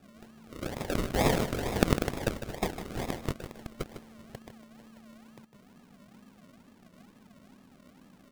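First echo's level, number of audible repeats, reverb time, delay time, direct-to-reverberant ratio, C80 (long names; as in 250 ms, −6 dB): −10.5 dB, 1, no reverb audible, 153 ms, no reverb audible, no reverb audible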